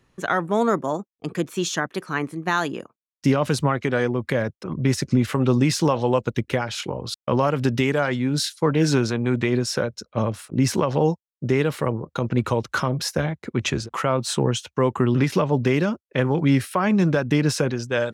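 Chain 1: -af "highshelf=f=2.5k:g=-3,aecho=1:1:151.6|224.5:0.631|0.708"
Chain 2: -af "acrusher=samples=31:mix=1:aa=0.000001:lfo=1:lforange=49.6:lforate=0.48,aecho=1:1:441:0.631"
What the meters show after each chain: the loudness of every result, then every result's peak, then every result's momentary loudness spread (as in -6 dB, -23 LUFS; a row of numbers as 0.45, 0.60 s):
-20.5, -21.5 LUFS; -3.0, -5.0 dBFS; 7, 6 LU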